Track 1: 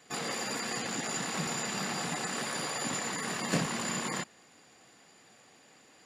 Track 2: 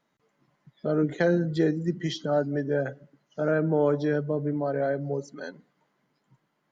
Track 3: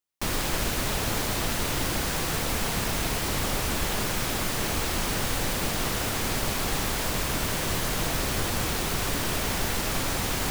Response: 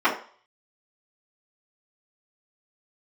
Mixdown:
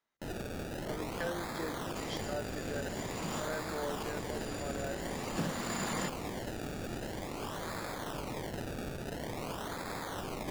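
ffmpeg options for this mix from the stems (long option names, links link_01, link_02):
-filter_complex "[0:a]acrossover=split=420[link_01][link_02];[link_02]acompressor=threshold=-37dB:ratio=6[link_03];[link_01][link_03]amix=inputs=2:normalize=0,adelay=1850,volume=2dB[link_04];[1:a]highpass=frequency=950:poles=1,volume=-9dB,asplit=2[link_05][link_06];[2:a]highpass=frequency=210:poles=1,acrusher=samples=29:mix=1:aa=0.000001:lfo=1:lforange=29:lforate=0.48,volume=-10dB[link_07];[link_06]apad=whole_len=348623[link_08];[link_04][link_08]sidechaincompress=threshold=-49dB:ratio=8:attack=16:release=1050[link_09];[link_09][link_05][link_07]amix=inputs=3:normalize=0"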